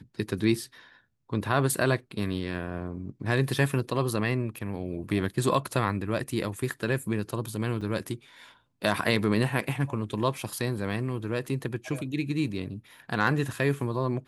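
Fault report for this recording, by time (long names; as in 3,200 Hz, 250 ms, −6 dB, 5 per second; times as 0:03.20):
0:07.81–0:07.82: drop-out 5.1 ms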